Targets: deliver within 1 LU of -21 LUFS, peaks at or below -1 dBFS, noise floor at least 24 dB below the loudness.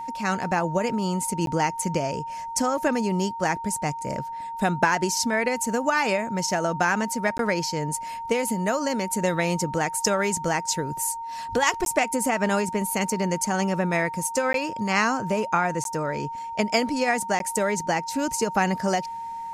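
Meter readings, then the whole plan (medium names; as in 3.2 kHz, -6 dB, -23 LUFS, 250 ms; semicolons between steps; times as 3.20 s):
dropouts 6; longest dropout 12 ms; steady tone 920 Hz; tone level -31 dBFS; loudness -25.0 LUFS; peak level -6.5 dBFS; loudness target -21.0 LUFS
-> interpolate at 1.46/7.38/11.85/14.53/15.84/17.39 s, 12 ms; band-stop 920 Hz, Q 30; trim +4 dB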